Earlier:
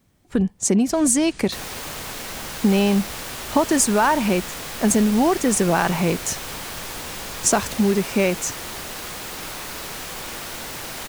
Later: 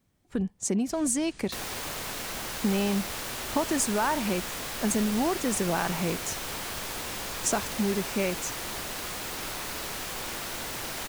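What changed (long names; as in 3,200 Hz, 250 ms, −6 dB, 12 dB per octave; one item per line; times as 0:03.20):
speech −9.0 dB
first sound −6.0 dB
reverb: off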